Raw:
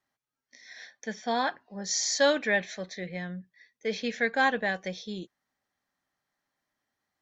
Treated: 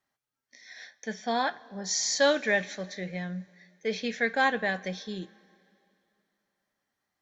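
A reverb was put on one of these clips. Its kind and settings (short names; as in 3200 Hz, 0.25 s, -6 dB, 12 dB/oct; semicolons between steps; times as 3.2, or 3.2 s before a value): two-slope reverb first 0.25 s, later 2.7 s, from -18 dB, DRR 13 dB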